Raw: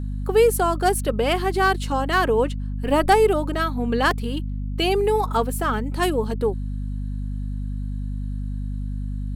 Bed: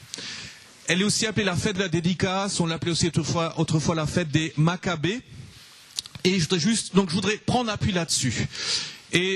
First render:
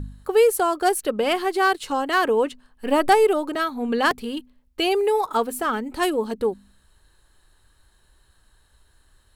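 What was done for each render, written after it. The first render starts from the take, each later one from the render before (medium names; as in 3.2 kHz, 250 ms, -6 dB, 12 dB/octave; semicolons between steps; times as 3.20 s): de-hum 50 Hz, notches 5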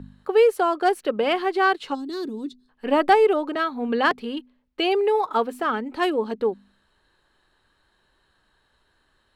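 1.94–2.69 s: time-frequency box 410–3400 Hz -23 dB; three-band isolator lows -14 dB, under 150 Hz, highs -17 dB, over 4.6 kHz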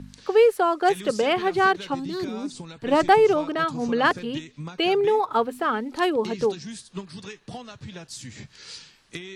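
add bed -15 dB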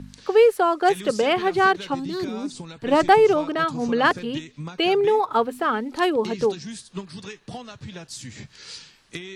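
trim +1.5 dB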